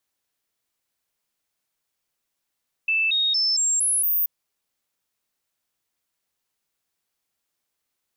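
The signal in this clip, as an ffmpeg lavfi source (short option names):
-f lavfi -i "aevalsrc='0.119*clip(min(mod(t,0.23),0.23-mod(t,0.23))/0.005,0,1)*sin(2*PI*2640*pow(2,floor(t/0.23)/2)*mod(t,0.23))':d=1.38:s=44100"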